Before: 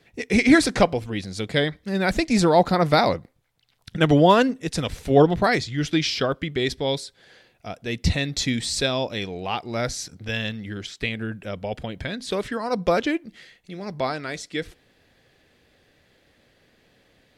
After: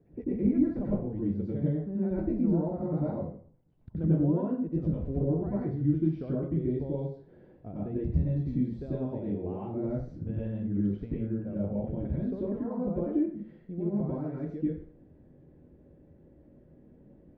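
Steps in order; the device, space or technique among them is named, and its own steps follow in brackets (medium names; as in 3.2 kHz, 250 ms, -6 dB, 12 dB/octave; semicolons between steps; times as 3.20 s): television next door (compression 4:1, threshold -34 dBFS, peak gain reduction 19.5 dB; low-pass 380 Hz 12 dB/octave; reverberation RT60 0.50 s, pre-delay 87 ms, DRR -6.5 dB)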